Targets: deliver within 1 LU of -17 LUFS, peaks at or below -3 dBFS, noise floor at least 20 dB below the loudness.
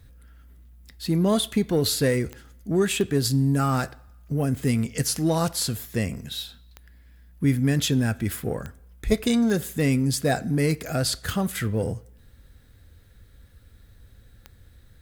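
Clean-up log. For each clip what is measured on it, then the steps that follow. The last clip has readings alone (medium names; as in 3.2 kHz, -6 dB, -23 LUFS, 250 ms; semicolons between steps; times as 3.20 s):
clicks found 8; loudness -24.5 LUFS; peak level -6.5 dBFS; loudness target -17.0 LUFS
-> de-click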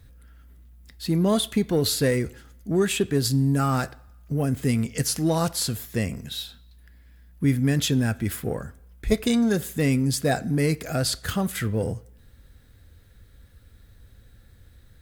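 clicks found 0; loudness -24.5 LUFS; peak level -6.5 dBFS; loudness target -17.0 LUFS
-> trim +7.5 dB; peak limiter -3 dBFS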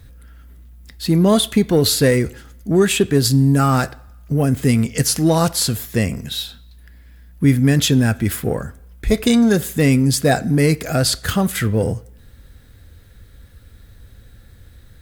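loudness -17.0 LUFS; peak level -3.0 dBFS; noise floor -46 dBFS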